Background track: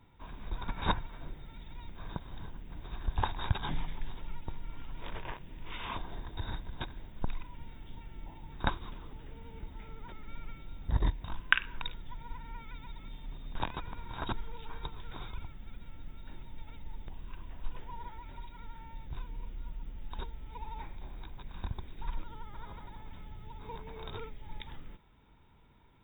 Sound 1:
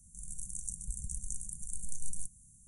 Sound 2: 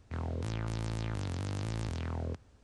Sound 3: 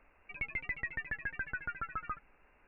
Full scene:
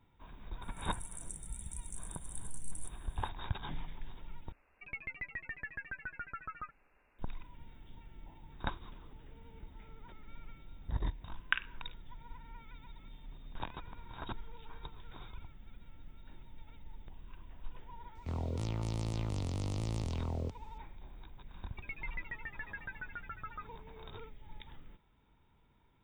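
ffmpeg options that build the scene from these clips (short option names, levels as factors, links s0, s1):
-filter_complex "[3:a]asplit=2[s0][s1];[0:a]volume=0.473[s2];[1:a]equalizer=f=6600:t=o:w=0.29:g=-14[s3];[2:a]equalizer=f=1600:w=3.1:g=-15[s4];[s2]asplit=2[s5][s6];[s5]atrim=end=4.524[s7];[s0]atrim=end=2.67,asetpts=PTS-STARTPTS,volume=0.596[s8];[s6]atrim=start=7.186[s9];[s3]atrim=end=2.67,asetpts=PTS-STARTPTS,volume=0.631,afade=t=in:d=0.004:c=hsin,afade=t=out:st=2.666:d=0.004:c=hsin,adelay=620[s10];[s4]atrim=end=2.63,asetpts=PTS-STARTPTS,volume=0.944,afade=t=in:d=0.004:c=hsin,afade=t=out:st=2.626:d=0.004:c=hsin,adelay=18150[s11];[s1]atrim=end=2.67,asetpts=PTS-STARTPTS,volume=0.501,afade=t=in:d=0.004:c=hsin,afade=t=out:st=2.666:d=0.004:c=hsin,adelay=947268S[s12];[s7][s8]acrossfade=d=0.004:c1=hsin:c2=hsin[s13];[s13][s9]acrossfade=d=0.004:c1=hsin:c2=hsin[s14];[s14][s10][s11][s12]amix=inputs=4:normalize=0"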